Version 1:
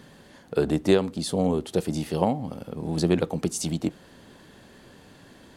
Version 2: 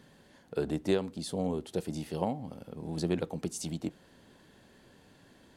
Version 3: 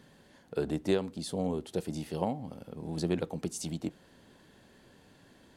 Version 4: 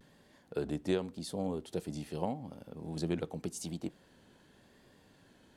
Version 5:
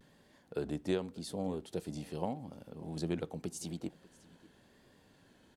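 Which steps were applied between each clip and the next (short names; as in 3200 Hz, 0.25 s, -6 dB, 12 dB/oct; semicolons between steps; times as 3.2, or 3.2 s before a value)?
notch 1200 Hz, Q 17; gain -8.5 dB
nothing audible
vibrato 0.87 Hz 62 cents; gain -3.5 dB
echo 0.591 s -21.5 dB; gain -1.5 dB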